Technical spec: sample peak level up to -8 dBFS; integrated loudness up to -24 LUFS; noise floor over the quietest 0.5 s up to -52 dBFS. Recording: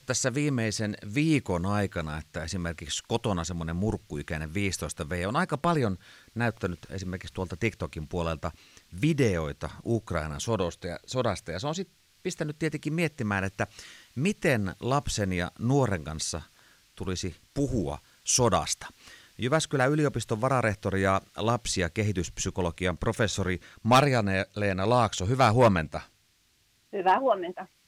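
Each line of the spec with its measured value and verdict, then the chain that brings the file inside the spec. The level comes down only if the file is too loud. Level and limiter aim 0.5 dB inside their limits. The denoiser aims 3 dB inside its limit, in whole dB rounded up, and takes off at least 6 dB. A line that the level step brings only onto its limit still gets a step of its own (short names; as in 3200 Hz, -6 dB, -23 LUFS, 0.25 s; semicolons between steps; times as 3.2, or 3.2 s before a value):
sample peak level -12.5 dBFS: OK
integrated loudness -28.5 LUFS: OK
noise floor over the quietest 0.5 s -67 dBFS: OK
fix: none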